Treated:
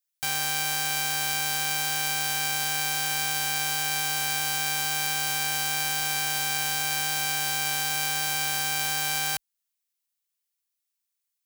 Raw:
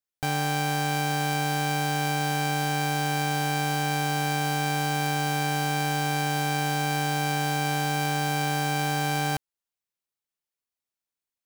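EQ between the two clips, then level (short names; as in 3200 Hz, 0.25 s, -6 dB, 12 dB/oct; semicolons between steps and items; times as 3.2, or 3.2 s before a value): tilt +2.5 dB/oct; bell 300 Hz -12 dB 2.6 oct; 0.0 dB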